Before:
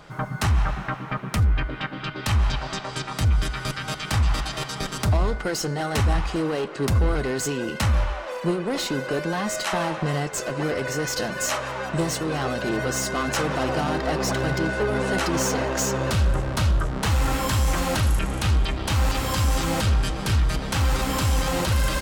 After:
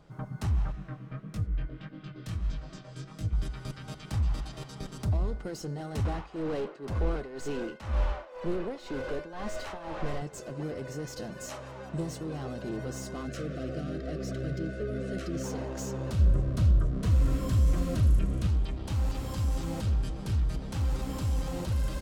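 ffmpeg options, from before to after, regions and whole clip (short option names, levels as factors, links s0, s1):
-filter_complex "[0:a]asettb=1/sr,asplit=3[s0][s1][s2];[s0]atrim=end=0.724[s3];[s1]atrim=start=0.72:end=3.33,asetpts=PTS-STARTPTS,afade=t=in:d=0.004:c=qsin,afade=t=out:st=2.606:d=0.004:c=qsin,aecho=1:1:6.3:0.42,atrim=end_sample=115101,flanger=delay=19:depth=5.4:speed=1.6,equalizer=f=860:t=o:w=0.27:g=-14.5[s4];[s2]atrim=start=3.326[s5];[s3][s4]acrossfade=d=0.004:c1=hsin:c2=qsin[s6];[s6][s5]acrossfade=d=0.004:c1=qsin:c2=hsin,asettb=1/sr,asplit=3[s7][s8][s9];[s7]atrim=end=6.054[s10];[s8]atrim=start=6.05:end=10.22,asetpts=PTS-STARTPTS,afade=t=in:d=0.004:c=qsin,afade=t=out:st=4.166:d=0.004:c=qsin,tremolo=f=2:d=0.9,asplit=2[s11][s12];[s12]highpass=f=720:p=1,volume=17.8,asoftclip=type=tanh:threshold=0.211[s13];[s11][s13]amix=inputs=2:normalize=0,lowpass=f=2000:p=1,volume=0.501,asubboost=boost=8:cutoff=53[s14];[s9]atrim=start=10.216[s15];[s10][s14]acrossfade=d=0.004:c1=hsin:c2=qsin[s16];[s16][s15]acrossfade=d=0.004:c1=qsin:c2=hsin,asettb=1/sr,asplit=3[s17][s18][s19];[s17]atrim=end=13.274[s20];[s18]atrim=start=13.27:end=15.44,asetpts=PTS-STARTPTS,afade=t=in:d=0.004:c=qsin,afade=t=out:st=2.166:d=0.004:c=qsin,asuperstop=centerf=910:order=8:qfactor=2,highshelf=f=7500:g=-6.5[s21];[s19]atrim=start=15.436[s22];[s20][s21]acrossfade=d=0.004:c1=hsin:c2=qsin[s23];[s23][s22]acrossfade=d=0.004:c1=qsin:c2=hsin,asettb=1/sr,asplit=3[s24][s25][s26];[s24]atrim=end=16.194[s27];[s25]atrim=start=16.19:end=18.47,asetpts=PTS-STARTPTS,afade=t=in:d=0.004:c=qsin,afade=t=out:st=2.276:d=0.004:c=qsin,asuperstop=centerf=850:order=20:qfactor=5.2,lowshelf=f=490:g=5.5[s28];[s26]atrim=start=18.466[s29];[s27][s28]acrossfade=d=0.004:c1=hsin:c2=qsin[s30];[s30][s29]acrossfade=d=0.004:c1=qsin:c2=hsin,lowpass=f=3700:p=1,equalizer=f=1700:w=0.39:g=-11.5,volume=0.473"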